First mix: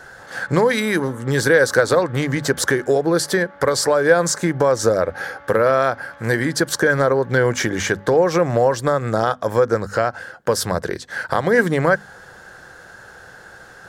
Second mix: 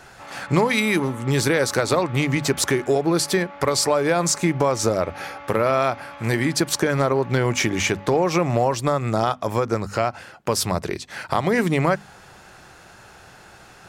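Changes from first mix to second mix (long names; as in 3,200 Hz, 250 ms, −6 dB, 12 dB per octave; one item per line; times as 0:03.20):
background +6.5 dB
master: add thirty-one-band graphic EQ 500 Hz −9 dB, 1,600 Hz −12 dB, 2,500 Hz +9 dB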